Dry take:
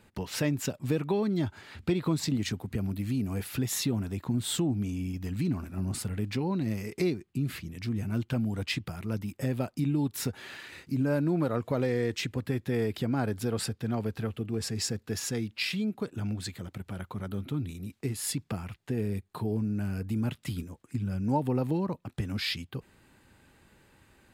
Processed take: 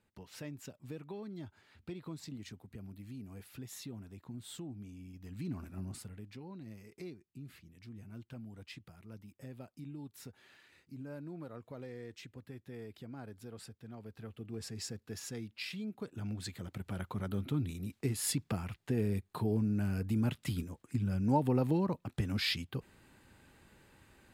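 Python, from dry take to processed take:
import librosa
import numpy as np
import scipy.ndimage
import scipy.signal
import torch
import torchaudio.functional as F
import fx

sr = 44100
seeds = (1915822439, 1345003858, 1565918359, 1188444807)

y = fx.gain(x, sr, db=fx.line((5.1, -16.5), (5.67, -7.0), (6.29, -18.0), (13.99, -18.0), (14.51, -10.5), (15.81, -10.5), (16.94, -1.5)))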